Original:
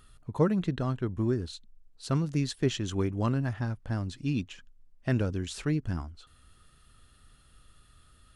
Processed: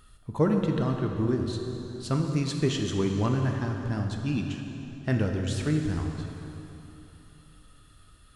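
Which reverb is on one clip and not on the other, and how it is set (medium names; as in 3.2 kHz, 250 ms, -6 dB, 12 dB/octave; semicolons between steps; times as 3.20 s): plate-style reverb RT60 3.4 s, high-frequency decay 0.8×, pre-delay 0 ms, DRR 2.5 dB; trim +1 dB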